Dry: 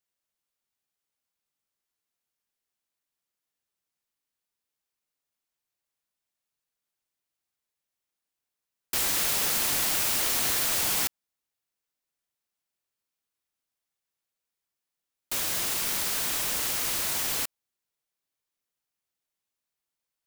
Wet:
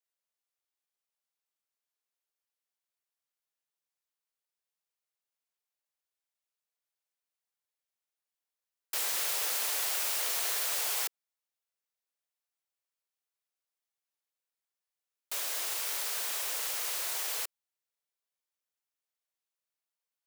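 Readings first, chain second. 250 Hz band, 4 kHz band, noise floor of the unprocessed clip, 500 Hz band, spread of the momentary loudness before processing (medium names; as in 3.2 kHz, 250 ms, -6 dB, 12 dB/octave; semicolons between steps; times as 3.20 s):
under -20 dB, -5.5 dB, under -85 dBFS, -6.5 dB, 6 LU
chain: steep high-pass 410 Hz 36 dB/octave; trim -5.5 dB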